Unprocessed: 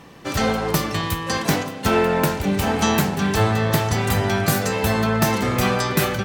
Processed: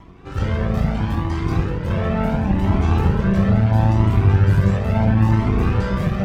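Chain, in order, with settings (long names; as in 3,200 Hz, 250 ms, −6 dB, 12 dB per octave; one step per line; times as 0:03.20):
brickwall limiter −11 dBFS, peak gain reduction 5.5 dB
convolution reverb RT60 1.7 s, pre-delay 3 ms, DRR −7.5 dB
upward compression, threshold −31 dBFS
half-wave rectification
high-pass filter 49 Hz
RIAA equalisation playback
notch filter 4,200 Hz, Q 26
flanger whose copies keep moving one way rising 0.74 Hz
level −4 dB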